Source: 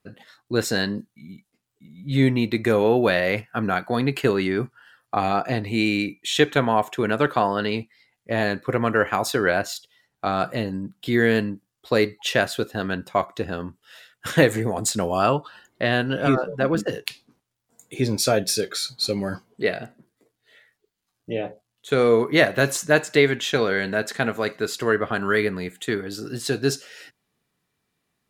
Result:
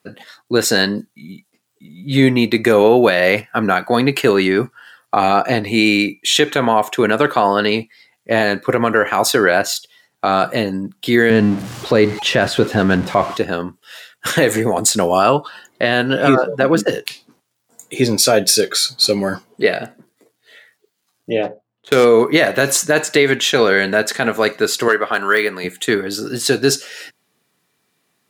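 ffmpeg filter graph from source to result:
-filter_complex "[0:a]asettb=1/sr,asplit=3[a][b][c];[a]atrim=end=11.304[d];[b]atrim=start=11.3:end=13.37,asetpts=PTS-STARTPTS,afade=t=in:d=0.004:c=qsin,afade=t=out:st=2.066:d=0.004:c=qsin,aeval=exprs='val(0)+0.5*0.0266*sgn(val(0))':c=same,aemphasis=mode=reproduction:type=bsi[e];[c]atrim=start=13.366[f];[d][e]acrossfade=d=0.004:c1=hsin:c2=qsin[g];[g][f]acrossfade=d=0.004:c1=qsin:c2=hsin,asettb=1/sr,asplit=3[h][i][j];[h]atrim=end=21.434[k];[i]atrim=start=21.43:end=22.05,asetpts=PTS-STARTPTS,afade=t=in:d=0.004:c=qsin,afade=t=out:st=0.616:d=0.004:c=qsin,highshelf=f=3.8k:g=7,adynamicsmooth=sensitivity=3.5:basefreq=930[l];[j]atrim=start=22.046[m];[k][l]acrossfade=d=0.004:c1=hsin:c2=qsin[n];[n][m]acrossfade=d=0.004:c1=qsin:c2=hsin,asettb=1/sr,asplit=3[o][p][q];[o]atrim=end=24.884[r];[p]atrim=start=24.88:end=25.64,asetpts=PTS-STARTPTS,afade=t=in:d=0.004:c=qsin,afade=t=out:st=0.756:d=0.004:c=qsin,highpass=f=630:p=1,deesser=0.75,asoftclip=type=hard:threshold=-12.5dB[s];[q]atrim=start=25.636[t];[r][s]acrossfade=d=0.004:c1=hsin:c2=qsin[u];[u][t]acrossfade=d=0.004:c1=qsin:c2=hsin,highpass=120,bass=f=250:g=-4,treble=f=4k:g=2,alimiter=level_in=10.5dB:limit=-1dB:release=50:level=0:latency=1,volume=-1dB"

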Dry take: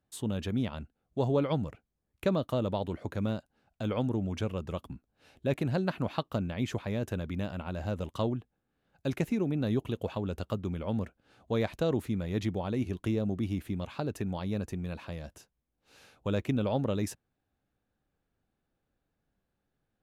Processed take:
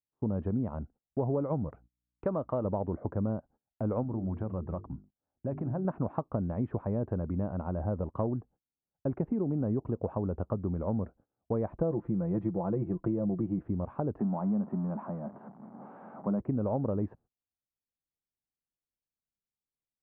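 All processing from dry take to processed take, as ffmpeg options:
-filter_complex "[0:a]asettb=1/sr,asplit=3[a][b][c];[a]atrim=end=1.694[d];[b]atrim=start=1.69:end=2.65,asetpts=PTS-STARTPTS,afade=t=in:d=0.004:c=qsin,afade=t=out:st=0.956:d=0.004:c=qsin,tiltshelf=f=680:g=-6,aeval=exprs='val(0)+0.000562*(sin(2*PI*60*n/s)+sin(2*PI*2*60*n/s)/2+sin(2*PI*3*60*n/s)/3+sin(2*PI*4*60*n/s)/4+sin(2*PI*5*60*n/s)/5)':c=same[e];[c]atrim=start=2.646[f];[d][e]acrossfade=d=0.004:c1=hsin:c2=qsin[g];[g][f]acrossfade=d=0.004:c1=qsin:c2=hsin,asettb=1/sr,asplit=3[h][i][j];[h]atrim=end=4.034[k];[i]atrim=start=4.03:end=5.85,asetpts=PTS-STARTPTS,afade=t=in:d=0.004:c=qsin,afade=t=out:st=1.816:d=0.004:c=qsin,equalizer=f=450:t=o:w=0.36:g=-6.5,bandreject=f=50:t=h:w=6,bandreject=f=100:t=h:w=6,bandreject=f=150:t=h:w=6,bandreject=f=200:t=h:w=6,bandreject=f=250:t=h:w=6,bandreject=f=300:t=h:w=6,bandreject=f=350:t=h:w=6,bandreject=f=400:t=h:w=6,bandreject=f=450:t=h:w=6,acompressor=threshold=-33dB:ratio=3:attack=3.2:release=140:knee=1:detection=peak[l];[j]atrim=start=5.846[m];[k][l]acrossfade=d=0.004:c1=hsin:c2=qsin[n];[n][m]acrossfade=d=0.004:c1=qsin:c2=hsin,asettb=1/sr,asplit=3[o][p][q];[o]atrim=end=11.774[r];[p]atrim=start=11.77:end=13.65,asetpts=PTS-STARTPTS,afade=t=in:d=0.004:c=qsin,afade=t=out:st=1.876:d=0.004:c=qsin,lowpass=9k,aecho=1:1:5.9:0.77,atrim=end_sample=82908[s];[q]atrim=start=13.646[t];[r][s]acrossfade=d=0.004:c1=hsin:c2=qsin[u];[u][t]acrossfade=d=0.004:c1=qsin:c2=hsin,asettb=1/sr,asplit=3[v][w][x];[v]atrim=end=14.194[y];[w]atrim=start=14.19:end=16.4,asetpts=PTS-STARTPTS,afade=t=in:d=0.004:c=qsin,afade=t=out:st=2.206:d=0.004:c=qsin,aeval=exprs='val(0)+0.5*0.01*sgn(val(0))':c=same,highpass=f=170:w=0.5412,highpass=f=170:w=1.3066,equalizer=f=210:t=q:w=4:g=8,equalizer=f=320:t=q:w=4:g=-5,equalizer=f=470:t=q:w=4:g=-10,equalizer=f=700:t=q:w=4:g=3,equalizer=f=1.7k:t=q:w=4:g=-4,equalizer=f=2.6k:t=q:w=4:g=-8,lowpass=f=3.1k:w=0.5412,lowpass=f=3.1k:w=1.3066[z];[x]atrim=start=16.396[aa];[y][z]acrossfade=d=0.004:c1=hsin:c2=qsin[ab];[ab][aa]acrossfade=d=0.004:c1=qsin:c2=hsin,lowpass=f=1.1k:w=0.5412,lowpass=f=1.1k:w=1.3066,agate=range=-27dB:threshold=-56dB:ratio=16:detection=peak,acompressor=threshold=-30dB:ratio=6,volume=3.5dB"

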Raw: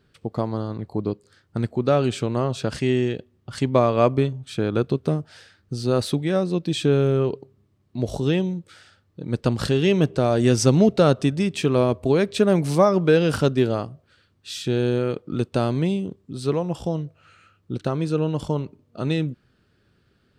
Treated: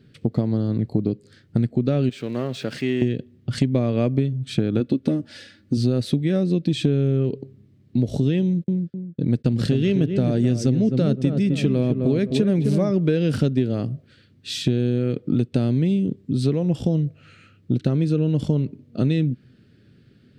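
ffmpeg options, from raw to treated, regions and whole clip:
-filter_complex "[0:a]asettb=1/sr,asplit=3[a][b][c];[a]atrim=end=2.094[d];[b]atrim=start=2.09:end=3.02,asetpts=PTS-STARTPTS,afade=t=in:d=0.004:c=qsin,afade=t=out:st=0.926:d=0.004:c=qsin,aeval=exprs='val(0)+0.5*0.0158*sgn(val(0))':c=same,highpass=f=1.1k:p=1,highshelf=f=3.1k:g=-11[e];[c]atrim=start=3.016[f];[d][e]acrossfade=d=0.004:c1=hsin:c2=qsin[g];[g][f]acrossfade=d=0.004:c1=qsin:c2=hsin,asettb=1/sr,asplit=3[h][i][j];[h]atrim=end=4.804[k];[i]atrim=start=4.8:end=5.77,asetpts=PTS-STARTPTS,afade=t=in:d=0.004:c=qsin,afade=t=out:st=0.966:d=0.004:c=qsin,highpass=100,aecho=1:1:3.5:0.67,atrim=end_sample=42777[l];[j]atrim=start=5.766[m];[k][l]acrossfade=d=0.004:c1=hsin:c2=qsin[n];[n][m]acrossfade=d=0.004:c1=qsin:c2=hsin,asettb=1/sr,asplit=3[o][p][q];[o]atrim=end=8.424[r];[p]atrim=start=8.42:end=12.91,asetpts=PTS-STARTPTS,afade=t=in:d=0.004:c=qsin,afade=t=out:st=4.486:d=0.004:c=qsin,agate=range=-31dB:threshold=-41dB:ratio=16:release=100:detection=peak,asplit=2[s][t];[t]adelay=258,lowpass=f=1.2k:p=1,volume=-6.5dB,asplit=2[u][v];[v]adelay=258,lowpass=f=1.2k:p=1,volume=0.33,asplit=2[w][x];[x]adelay=258,lowpass=f=1.2k:p=1,volume=0.33,asplit=2[y][z];[z]adelay=258,lowpass=f=1.2k:p=1,volume=0.33[aa];[s][u][w][y][aa]amix=inputs=5:normalize=0,atrim=end_sample=198009[ab];[q]atrim=start=12.906[ac];[r][ab]acrossfade=d=0.004:c1=hsin:c2=qsin[ad];[ad][ac]acrossfade=d=0.004:c1=qsin:c2=hsin,equalizer=f=125:t=o:w=1:g=11,equalizer=f=250:t=o:w=1:g=11,equalizer=f=500:t=o:w=1:g=4,equalizer=f=1k:t=o:w=1:g=-9,equalizer=f=2k:t=o:w=1:g=6,equalizer=f=4k:t=o:w=1:g=4,acompressor=threshold=-17dB:ratio=6"

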